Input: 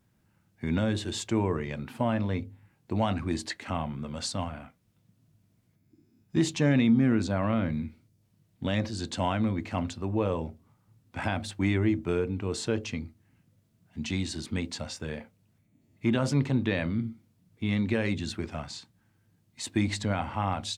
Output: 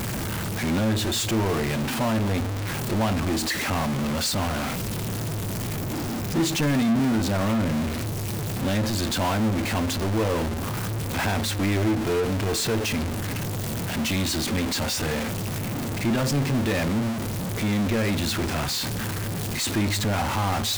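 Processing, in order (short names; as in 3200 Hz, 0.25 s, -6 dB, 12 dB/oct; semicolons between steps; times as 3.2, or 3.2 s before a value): zero-crossing step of -32 dBFS; resonator 110 Hz, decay 0.55 s, harmonics all, mix 40%; power-law curve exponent 0.5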